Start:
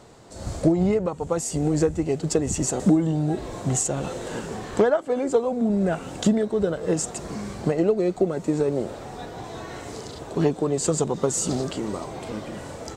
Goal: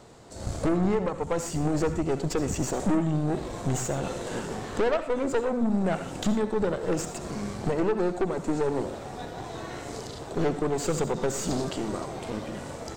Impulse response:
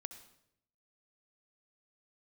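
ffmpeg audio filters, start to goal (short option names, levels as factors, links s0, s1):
-filter_complex "[0:a]aeval=exprs='(tanh(14.1*val(0)+0.65)-tanh(0.65))/14.1':c=same,acrossover=split=5700[s0][s1];[s1]acompressor=threshold=0.00891:ratio=4:attack=1:release=60[s2];[s0][s2]amix=inputs=2:normalize=0[s3];[1:a]atrim=start_sample=2205,atrim=end_sample=6174[s4];[s3][s4]afir=irnorm=-1:irlink=0,volume=2"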